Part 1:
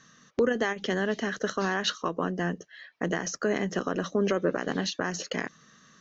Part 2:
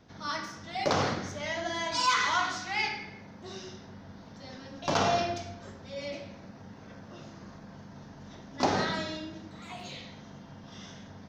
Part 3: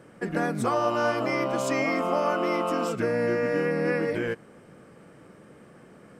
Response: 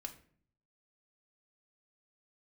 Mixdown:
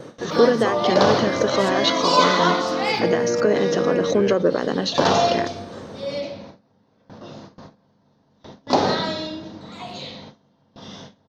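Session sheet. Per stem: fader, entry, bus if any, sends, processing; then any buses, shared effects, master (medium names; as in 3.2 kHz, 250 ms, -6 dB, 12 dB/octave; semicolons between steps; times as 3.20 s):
-3.0 dB, 0.00 s, no send, swell ahead of each attack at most 130 dB/s
-1.0 dB, 0.10 s, no send, none
-8.0 dB, 0.00 s, no send, upward compressor, threshold -30 dBFS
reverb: none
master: ten-band graphic EQ 125 Hz +6 dB, 250 Hz +6 dB, 500 Hz +10 dB, 1 kHz +7 dB, 4 kHz +11 dB; gate with hold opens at -29 dBFS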